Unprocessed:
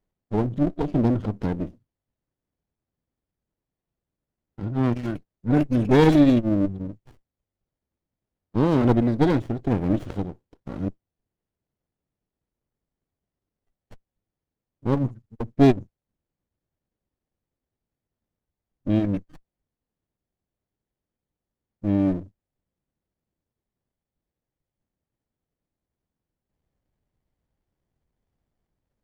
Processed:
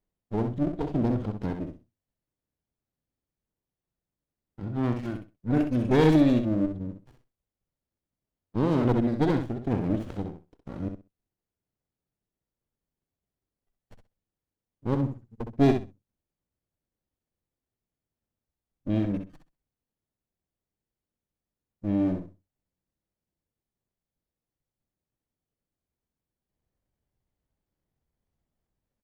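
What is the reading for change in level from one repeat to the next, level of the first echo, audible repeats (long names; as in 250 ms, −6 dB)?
−15.0 dB, −7.0 dB, 2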